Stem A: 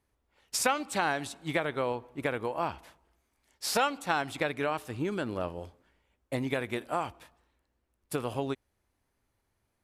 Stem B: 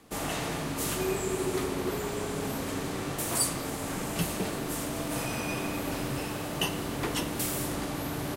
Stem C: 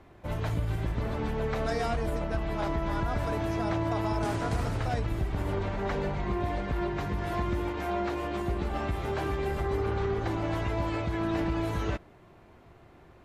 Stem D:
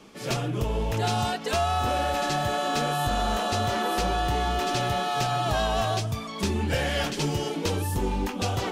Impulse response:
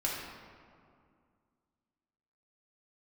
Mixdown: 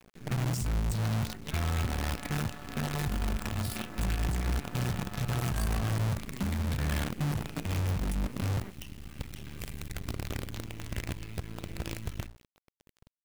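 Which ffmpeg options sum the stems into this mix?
-filter_complex "[0:a]acompressor=threshold=-31dB:ratio=4,asplit=2[a][b];[b]afreqshift=-0.52[c];[a][c]amix=inputs=2:normalize=1,volume=2dB,asplit=2[d][e];[1:a]bass=f=250:g=-2,treble=f=4k:g=-8,adelay=2200,volume=-9dB[f];[2:a]bandreject=f=60:t=h:w=6,bandreject=f=120:t=h:w=6,bandreject=f=180:t=h:w=6,bandreject=f=240:t=h:w=6,bandreject=f=300:t=h:w=6,bandreject=f=360:t=h:w=6,adelay=300,volume=-2.5dB[g];[3:a]lowpass=f=1.7k:w=0.5412,lowpass=f=1.7k:w=1.3066,volume=1.5dB[h];[e]apad=whole_len=597185[i];[g][i]sidechaincompress=threshold=-39dB:ratio=8:attack=9.6:release=1480[j];[d][f][j][h]amix=inputs=4:normalize=0,firequalizer=gain_entry='entry(150,0);entry(220,-3);entry(450,-25);entry(2300,-4)':delay=0.05:min_phase=1,acrusher=bits=6:dc=4:mix=0:aa=0.000001,alimiter=level_in=0.5dB:limit=-24dB:level=0:latency=1:release=55,volume=-0.5dB"

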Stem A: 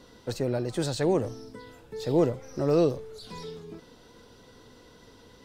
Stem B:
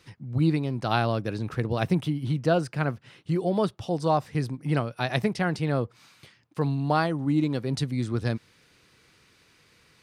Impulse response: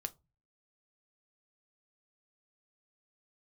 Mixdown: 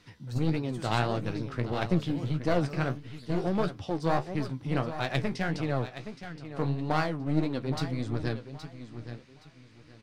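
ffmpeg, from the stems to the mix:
-filter_complex "[0:a]equalizer=f=470:w=0.87:g=-13,volume=-5.5dB[a];[1:a]lowpass=6.6k,aeval=exprs='clip(val(0),-1,0.0316)':c=same,volume=1.5dB,asplit=2[b][c];[c]volume=-11.5dB,aecho=0:1:820|1640|2460|3280:1|0.26|0.0676|0.0176[d];[a][b][d]amix=inputs=3:normalize=0,flanger=delay=9.1:depth=9.8:regen=43:speed=1.6:shape=triangular"

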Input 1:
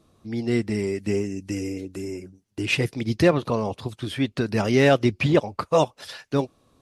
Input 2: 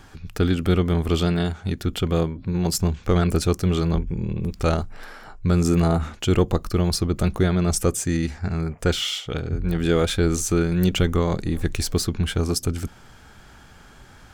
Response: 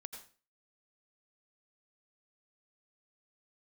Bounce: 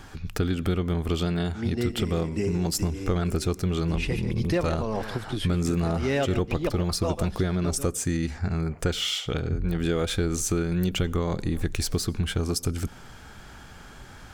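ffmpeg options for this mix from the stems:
-filter_complex "[0:a]adelay=1300,volume=1dB,asplit=2[a][b];[b]volume=-14dB[c];[1:a]volume=1.5dB,asplit=3[d][e][f];[e]volume=-15dB[g];[f]apad=whole_len=357997[h];[a][h]sidechaincompress=threshold=-20dB:ratio=8:attack=16:release=294[i];[2:a]atrim=start_sample=2205[j];[g][j]afir=irnorm=-1:irlink=0[k];[c]aecho=0:1:147:1[l];[i][d][k][l]amix=inputs=4:normalize=0,acompressor=threshold=-24dB:ratio=3"

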